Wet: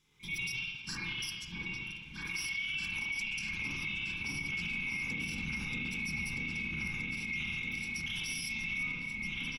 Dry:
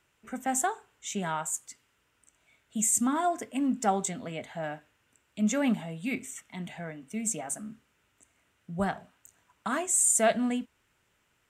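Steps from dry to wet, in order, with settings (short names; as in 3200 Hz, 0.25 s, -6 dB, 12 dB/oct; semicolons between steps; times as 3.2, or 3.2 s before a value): band-swap scrambler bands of 2000 Hz; Butterworth band-stop 650 Hz, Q 2.4; level quantiser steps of 10 dB; fifteen-band EQ 160 Hz +12 dB, 630 Hz -9 dB, 6300 Hz +9 dB; compressor 5:1, threshold -41 dBFS, peak gain reduction 17 dB; low shelf 180 Hz +8.5 dB; repeats that get brighter 0.761 s, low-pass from 750 Hz, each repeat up 2 oct, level 0 dB; reverb RT60 1.6 s, pre-delay 39 ms, DRR -7 dB; limiter -30.5 dBFS, peak gain reduction 9.5 dB; tempo 1.2×; gain +2.5 dB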